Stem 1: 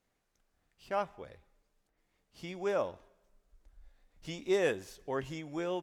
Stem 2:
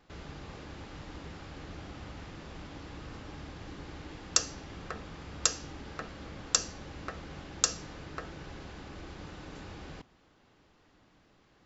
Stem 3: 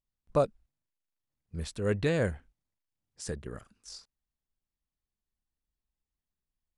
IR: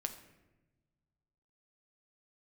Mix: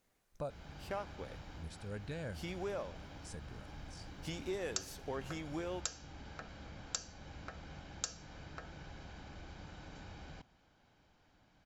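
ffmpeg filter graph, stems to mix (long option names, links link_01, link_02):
-filter_complex "[0:a]highshelf=frequency=8800:gain=6,acompressor=threshold=-40dB:ratio=5,volume=1.5dB[link_01];[1:a]adelay=400,volume=-5.5dB[link_02];[2:a]adelay=50,volume=-10dB[link_03];[link_02][link_03]amix=inputs=2:normalize=0,aecho=1:1:1.3:0.39,acompressor=threshold=-48dB:ratio=1.5,volume=0dB[link_04];[link_01][link_04]amix=inputs=2:normalize=0"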